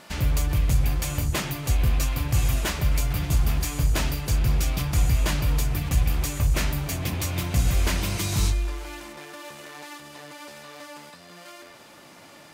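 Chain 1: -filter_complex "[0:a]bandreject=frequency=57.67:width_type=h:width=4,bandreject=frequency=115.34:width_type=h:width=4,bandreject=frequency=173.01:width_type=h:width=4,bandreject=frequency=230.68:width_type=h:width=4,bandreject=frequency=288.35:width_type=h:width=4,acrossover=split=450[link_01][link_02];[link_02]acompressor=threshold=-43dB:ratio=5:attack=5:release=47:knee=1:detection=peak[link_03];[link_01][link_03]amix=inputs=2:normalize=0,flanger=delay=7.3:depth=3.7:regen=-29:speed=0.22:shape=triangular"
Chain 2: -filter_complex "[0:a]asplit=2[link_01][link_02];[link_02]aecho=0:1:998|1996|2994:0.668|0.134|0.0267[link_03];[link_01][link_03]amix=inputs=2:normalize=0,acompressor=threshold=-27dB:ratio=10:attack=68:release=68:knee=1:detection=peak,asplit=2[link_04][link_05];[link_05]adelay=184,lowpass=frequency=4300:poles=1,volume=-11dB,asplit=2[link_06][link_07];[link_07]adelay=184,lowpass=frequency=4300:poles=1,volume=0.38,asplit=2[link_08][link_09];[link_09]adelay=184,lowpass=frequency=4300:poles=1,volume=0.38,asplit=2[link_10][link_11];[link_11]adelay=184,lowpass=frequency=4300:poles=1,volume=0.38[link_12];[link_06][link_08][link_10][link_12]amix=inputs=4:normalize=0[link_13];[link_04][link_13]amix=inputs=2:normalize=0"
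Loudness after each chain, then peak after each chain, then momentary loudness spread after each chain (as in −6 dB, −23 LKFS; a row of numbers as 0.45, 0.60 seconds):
−32.0, −27.0 LKFS; −16.0, −12.0 dBFS; 18, 14 LU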